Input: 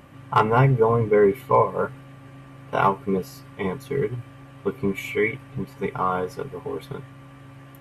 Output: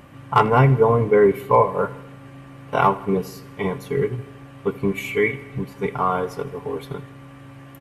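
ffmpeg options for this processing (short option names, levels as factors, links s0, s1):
-af "aecho=1:1:80|160|240|320|400:0.119|0.0701|0.0414|0.0244|0.0144,volume=1.33"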